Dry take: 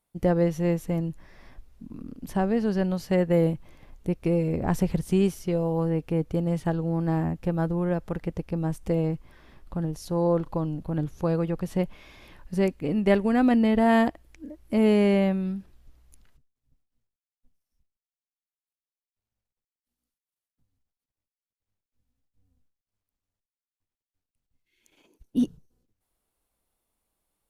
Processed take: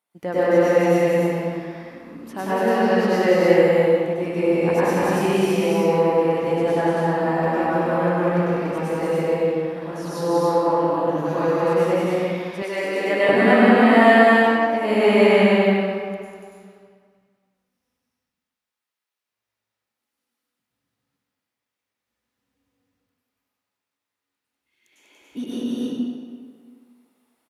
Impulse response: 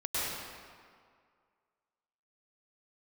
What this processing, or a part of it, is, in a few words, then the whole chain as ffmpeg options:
stadium PA: -filter_complex "[0:a]highpass=220,equalizer=f=1900:t=o:w=2.6:g=7,aecho=1:1:195.3|285.7:0.708|0.794[s0];[1:a]atrim=start_sample=2205[s1];[s0][s1]afir=irnorm=-1:irlink=0,asettb=1/sr,asplit=3[s2][s3][s4];[s2]atrim=end=12.624[s5];[s3]atrim=start=12.62:end=13.29,asetpts=PTS-STARTPTS,afade=t=in:d=0.004:c=qsin,afade=t=out:st=0.666:d=0.004:c=qsin,highpass=380[s6];[s4]atrim=start=13.286[s7];[s5][s6]acrossfade=d=0.004:c1=hsin:c2=qsin[s8];[s8][s7]acrossfade=d=0.004:c1=qsin:c2=hsin,volume=0.708"

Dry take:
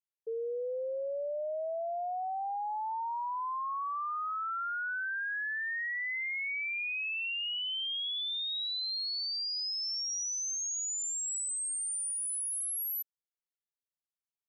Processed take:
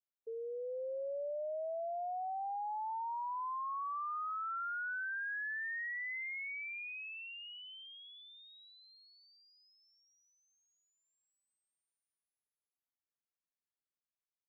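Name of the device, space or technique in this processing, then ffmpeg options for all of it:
action camera in a waterproof case: -af "lowpass=f=2200:w=0.5412,lowpass=f=2200:w=1.3066,dynaudnorm=f=160:g=9:m=1.41,volume=0.447" -ar 44100 -c:a aac -b:a 64k

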